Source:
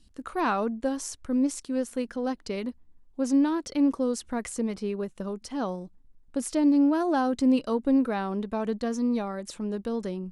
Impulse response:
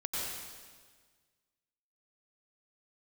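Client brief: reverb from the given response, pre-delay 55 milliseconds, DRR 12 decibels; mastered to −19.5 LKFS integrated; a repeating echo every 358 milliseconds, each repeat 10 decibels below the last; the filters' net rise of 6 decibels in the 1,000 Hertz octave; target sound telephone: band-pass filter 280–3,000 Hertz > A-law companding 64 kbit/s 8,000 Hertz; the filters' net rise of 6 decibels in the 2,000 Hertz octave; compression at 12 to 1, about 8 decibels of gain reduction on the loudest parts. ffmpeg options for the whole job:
-filter_complex "[0:a]equalizer=frequency=1000:width_type=o:gain=6.5,equalizer=frequency=2000:width_type=o:gain=6,acompressor=threshold=-25dB:ratio=12,aecho=1:1:358|716|1074|1432:0.316|0.101|0.0324|0.0104,asplit=2[link_01][link_02];[1:a]atrim=start_sample=2205,adelay=55[link_03];[link_02][link_03]afir=irnorm=-1:irlink=0,volume=-16.5dB[link_04];[link_01][link_04]amix=inputs=2:normalize=0,highpass=280,lowpass=3000,volume=13dB" -ar 8000 -c:a pcm_alaw

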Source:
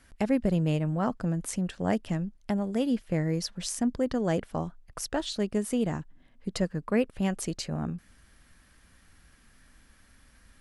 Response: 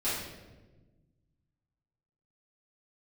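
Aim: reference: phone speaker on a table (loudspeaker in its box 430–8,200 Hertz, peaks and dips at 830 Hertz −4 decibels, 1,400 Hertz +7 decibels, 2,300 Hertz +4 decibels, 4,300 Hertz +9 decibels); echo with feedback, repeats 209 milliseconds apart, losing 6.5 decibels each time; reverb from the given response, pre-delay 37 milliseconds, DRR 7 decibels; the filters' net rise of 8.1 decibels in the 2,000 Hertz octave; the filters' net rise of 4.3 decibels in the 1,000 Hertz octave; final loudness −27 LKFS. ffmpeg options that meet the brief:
-filter_complex "[0:a]equalizer=frequency=1000:width_type=o:gain=5.5,equalizer=frequency=2000:width_type=o:gain=4,aecho=1:1:209|418|627|836|1045|1254:0.473|0.222|0.105|0.0491|0.0231|0.0109,asplit=2[link_01][link_02];[1:a]atrim=start_sample=2205,adelay=37[link_03];[link_02][link_03]afir=irnorm=-1:irlink=0,volume=-15dB[link_04];[link_01][link_04]amix=inputs=2:normalize=0,highpass=frequency=430:width=0.5412,highpass=frequency=430:width=1.3066,equalizer=frequency=830:width_type=q:width=4:gain=-4,equalizer=frequency=1400:width_type=q:width=4:gain=7,equalizer=frequency=2300:width_type=q:width=4:gain=4,equalizer=frequency=4300:width_type=q:width=4:gain=9,lowpass=frequency=8200:width=0.5412,lowpass=frequency=8200:width=1.3066,volume=3.5dB"

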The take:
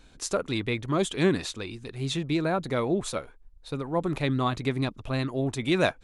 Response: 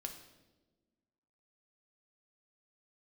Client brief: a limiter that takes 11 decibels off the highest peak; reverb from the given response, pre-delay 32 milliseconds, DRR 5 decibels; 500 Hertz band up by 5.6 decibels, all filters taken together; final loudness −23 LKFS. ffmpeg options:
-filter_complex "[0:a]equalizer=frequency=500:width_type=o:gain=7.5,alimiter=limit=-19dB:level=0:latency=1,asplit=2[link_01][link_02];[1:a]atrim=start_sample=2205,adelay=32[link_03];[link_02][link_03]afir=irnorm=-1:irlink=0,volume=-2.5dB[link_04];[link_01][link_04]amix=inputs=2:normalize=0,volume=5dB"

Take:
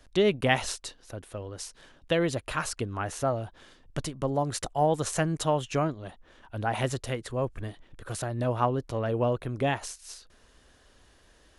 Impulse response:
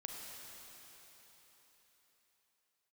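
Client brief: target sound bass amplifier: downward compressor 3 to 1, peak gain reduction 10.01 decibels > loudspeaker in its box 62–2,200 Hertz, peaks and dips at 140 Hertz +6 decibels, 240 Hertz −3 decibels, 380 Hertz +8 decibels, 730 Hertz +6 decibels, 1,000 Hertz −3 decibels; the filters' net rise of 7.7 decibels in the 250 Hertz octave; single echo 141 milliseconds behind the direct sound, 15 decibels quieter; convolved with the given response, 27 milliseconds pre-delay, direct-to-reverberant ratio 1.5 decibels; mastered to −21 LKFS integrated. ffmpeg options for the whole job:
-filter_complex "[0:a]equalizer=frequency=250:width_type=o:gain=8.5,aecho=1:1:141:0.178,asplit=2[link_01][link_02];[1:a]atrim=start_sample=2205,adelay=27[link_03];[link_02][link_03]afir=irnorm=-1:irlink=0,volume=0dB[link_04];[link_01][link_04]amix=inputs=2:normalize=0,acompressor=threshold=-27dB:ratio=3,highpass=frequency=62:width=0.5412,highpass=frequency=62:width=1.3066,equalizer=frequency=140:width_type=q:width=4:gain=6,equalizer=frequency=240:width_type=q:width=4:gain=-3,equalizer=frequency=380:width_type=q:width=4:gain=8,equalizer=frequency=730:width_type=q:width=4:gain=6,equalizer=frequency=1000:width_type=q:width=4:gain=-3,lowpass=frequency=2200:width=0.5412,lowpass=frequency=2200:width=1.3066,volume=7.5dB"

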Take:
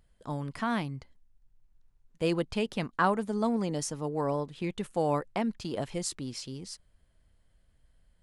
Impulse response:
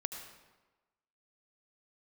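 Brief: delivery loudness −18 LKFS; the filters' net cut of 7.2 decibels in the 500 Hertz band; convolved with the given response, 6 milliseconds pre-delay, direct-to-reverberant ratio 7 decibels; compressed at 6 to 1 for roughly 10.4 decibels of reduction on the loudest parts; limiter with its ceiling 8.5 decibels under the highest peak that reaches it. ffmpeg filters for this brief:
-filter_complex "[0:a]equalizer=frequency=500:width_type=o:gain=-9,acompressor=threshold=-33dB:ratio=6,alimiter=level_in=5dB:limit=-24dB:level=0:latency=1,volume=-5dB,asplit=2[link_01][link_02];[1:a]atrim=start_sample=2205,adelay=6[link_03];[link_02][link_03]afir=irnorm=-1:irlink=0,volume=-7.5dB[link_04];[link_01][link_04]amix=inputs=2:normalize=0,volume=21.5dB"

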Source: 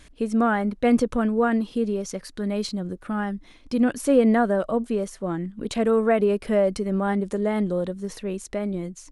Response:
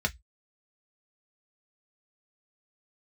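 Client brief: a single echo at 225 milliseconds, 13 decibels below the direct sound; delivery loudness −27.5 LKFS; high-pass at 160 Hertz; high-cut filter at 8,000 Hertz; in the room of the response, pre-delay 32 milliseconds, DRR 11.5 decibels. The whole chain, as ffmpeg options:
-filter_complex "[0:a]highpass=160,lowpass=8000,aecho=1:1:225:0.224,asplit=2[link_01][link_02];[1:a]atrim=start_sample=2205,adelay=32[link_03];[link_02][link_03]afir=irnorm=-1:irlink=0,volume=-19.5dB[link_04];[link_01][link_04]amix=inputs=2:normalize=0,volume=-3.5dB"

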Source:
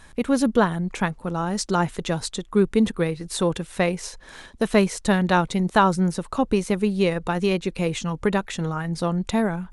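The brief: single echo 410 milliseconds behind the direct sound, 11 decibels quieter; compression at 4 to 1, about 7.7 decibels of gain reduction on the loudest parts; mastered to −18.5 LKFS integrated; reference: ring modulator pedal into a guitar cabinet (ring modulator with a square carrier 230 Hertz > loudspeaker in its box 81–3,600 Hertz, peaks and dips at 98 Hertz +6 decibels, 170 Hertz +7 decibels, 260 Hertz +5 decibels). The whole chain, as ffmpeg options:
ffmpeg -i in.wav -af "acompressor=threshold=-22dB:ratio=4,aecho=1:1:410:0.282,aeval=exprs='val(0)*sgn(sin(2*PI*230*n/s))':channel_layout=same,highpass=81,equalizer=frequency=98:width_type=q:width=4:gain=6,equalizer=frequency=170:width_type=q:width=4:gain=7,equalizer=frequency=260:width_type=q:width=4:gain=5,lowpass=frequency=3600:width=0.5412,lowpass=frequency=3600:width=1.3066,volume=9dB" out.wav

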